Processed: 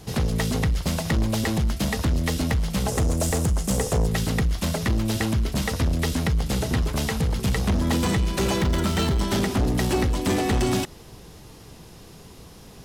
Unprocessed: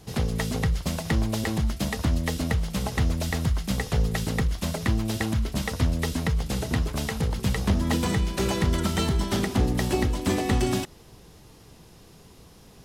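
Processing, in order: 2.88–4.07 graphic EQ 500/2000/4000/8000 Hz +8/-4/-6/+11 dB; soft clip -22.5 dBFS, distortion -12 dB; 8.58–9.2 decimation joined by straight lines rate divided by 2×; gain +5.5 dB

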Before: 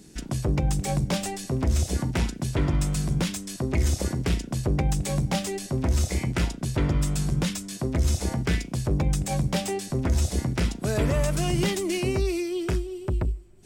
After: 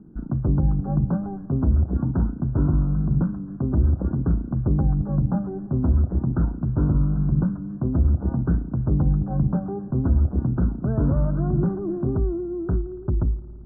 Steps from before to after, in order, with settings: vibrato 3.4 Hz 46 cents; steep low-pass 1500 Hz 96 dB/oct; resonant low shelf 350 Hz +6.5 dB, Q 1.5; on a send: reverb RT60 3.1 s, pre-delay 55 ms, DRR 17.5 dB; on the sum: gain -3 dB

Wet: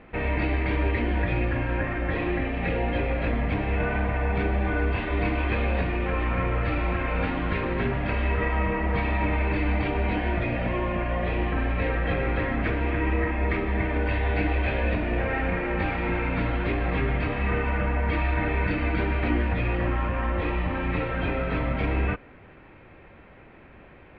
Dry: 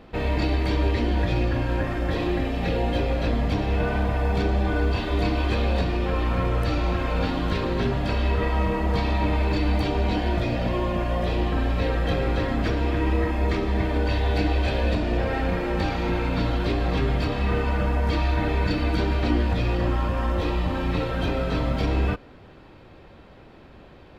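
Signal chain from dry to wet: ladder low-pass 2600 Hz, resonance 50%; gain +7 dB

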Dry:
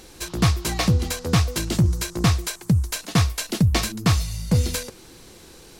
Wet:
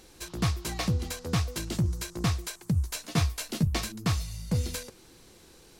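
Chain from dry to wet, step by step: 2.73–3.67 doubler 13 ms -4 dB; gain -8.5 dB

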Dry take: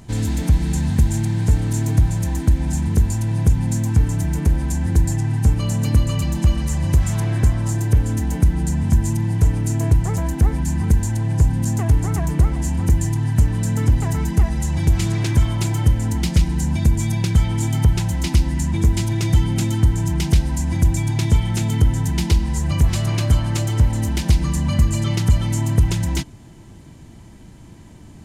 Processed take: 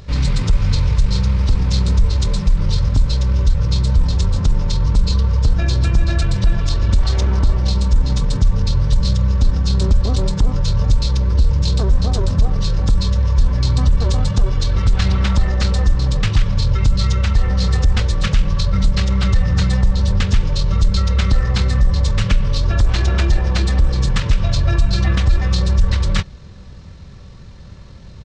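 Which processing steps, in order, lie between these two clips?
pitch shift -9.5 st; maximiser +10 dB; gain -4.5 dB

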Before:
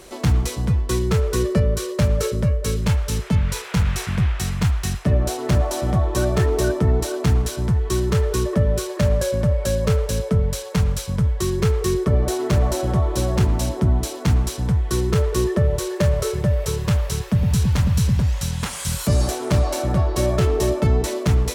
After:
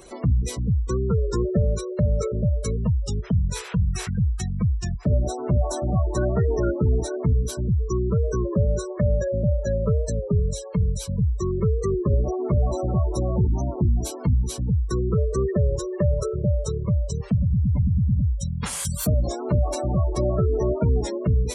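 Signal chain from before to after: spectral gate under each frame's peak -20 dB strong; high shelf 8500 Hz +11 dB; record warp 33 1/3 rpm, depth 100 cents; gain -2.5 dB

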